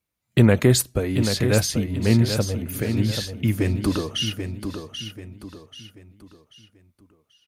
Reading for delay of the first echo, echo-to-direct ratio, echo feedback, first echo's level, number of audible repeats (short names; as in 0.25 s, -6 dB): 0.786 s, -7.5 dB, 37%, -8.0 dB, 4